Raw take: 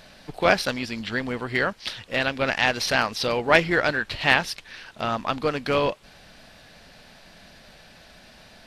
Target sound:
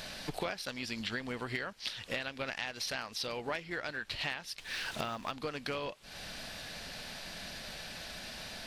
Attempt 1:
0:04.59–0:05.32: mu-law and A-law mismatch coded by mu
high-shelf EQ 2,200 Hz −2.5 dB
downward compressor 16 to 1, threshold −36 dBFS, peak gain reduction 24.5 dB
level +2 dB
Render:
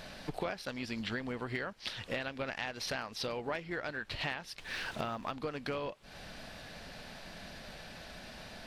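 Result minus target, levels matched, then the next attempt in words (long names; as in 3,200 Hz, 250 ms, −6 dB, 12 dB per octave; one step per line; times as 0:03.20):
4,000 Hz band −2.5 dB
0:04.59–0:05.32: mu-law and A-law mismatch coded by mu
high-shelf EQ 2,200 Hz +7 dB
downward compressor 16 to 1, threshold −36 dBFS, peak gain reduction 27.5 dB
level +2 dB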